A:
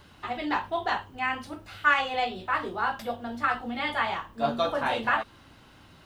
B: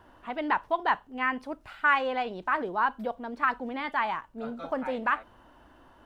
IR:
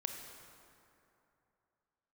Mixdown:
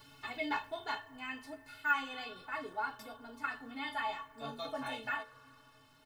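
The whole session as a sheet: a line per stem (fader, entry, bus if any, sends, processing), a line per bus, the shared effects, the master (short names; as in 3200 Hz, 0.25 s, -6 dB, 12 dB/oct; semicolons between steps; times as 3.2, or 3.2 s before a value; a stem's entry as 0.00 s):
+3.0 dB, 0.00 s, no send, de-esser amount 90%; auto duck -8 dB, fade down 1.25 s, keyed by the second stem
-10.5 dB, 7.3 ms, send -4 dB, dry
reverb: on, RT60 2.9 s, pre-delay 23 ms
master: high shelf 3100 Hz +10 dB; metallic resonator 130 Hz, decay 0.21 s, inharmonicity 0.03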